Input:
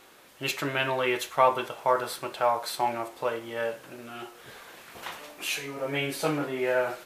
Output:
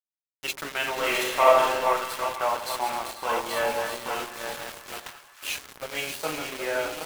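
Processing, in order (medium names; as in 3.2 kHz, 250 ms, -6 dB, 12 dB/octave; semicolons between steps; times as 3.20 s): backward echo that repeats 415 ms, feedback 58%, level -6 dB; high-pass 140 Hz 24 dB/octave; bass shelf 370 Hz -10 dB; 3.29–5.00 s: waveshaping leveller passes 2; small samples zeroed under -31.5 dBFS; 0.96–1.77 s: reverb throw, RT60 0.84 s, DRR -3.5 dB; two-band feedback delay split 1 kHz, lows 87 ms, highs 486 ms, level -12 dB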